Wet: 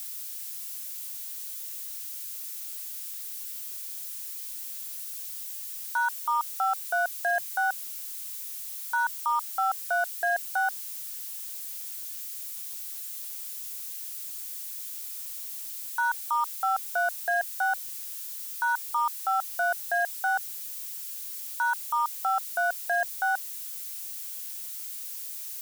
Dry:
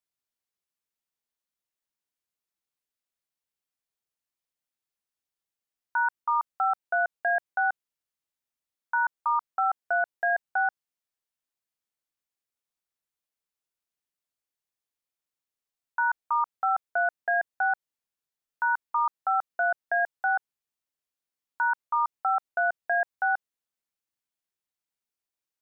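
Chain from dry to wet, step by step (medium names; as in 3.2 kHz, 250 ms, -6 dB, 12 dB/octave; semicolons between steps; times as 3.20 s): zero-crossing glitches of -31.5 dBFS; trim -1 dB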